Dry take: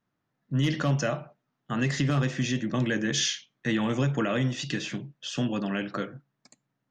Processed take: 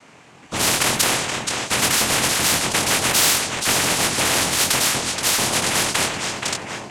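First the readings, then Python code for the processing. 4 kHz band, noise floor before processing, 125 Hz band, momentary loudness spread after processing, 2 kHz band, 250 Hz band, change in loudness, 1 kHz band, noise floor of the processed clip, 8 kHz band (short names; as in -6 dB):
+15.0 dB, -81 dBFS, -3.5 dB, 7 LU, +12.5 dB, -1.0 dB, +10.5 dB, +14.0 dB, -47 dBFS, +20.0 dB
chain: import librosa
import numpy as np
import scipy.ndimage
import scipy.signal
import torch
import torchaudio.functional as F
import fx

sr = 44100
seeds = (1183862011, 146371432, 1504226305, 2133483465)

p1 = fx.highpass(x, sr, hz=430.0, slope=6)
p2 = fx.high_shelf(p1, sr, hz=5900.0, db=6.5)
p3 = fx.sample_hold(p2, sr, seeds[0], rate_hz=4200.0, jitter_pct=0)
p4 = p2 + F.gain(torch.from_numpy(p3), -7.0).numpy()
p5 = fx.noise_vocoder(p4, sr, seeds[1], bands=4)
p6 = fx.doubler(p5, sr, ms=23.0, db=-5)
p7 = p6 + fx.echo_feedback(p6, sr, ms=476, feedback_pct=33, wet_db=-20, dry=0)
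p8 = fx.spectral_comp(p7, sr, ratio=4.0)
y = F.gain(torch.from_numpy(p8), 7.5).numpy()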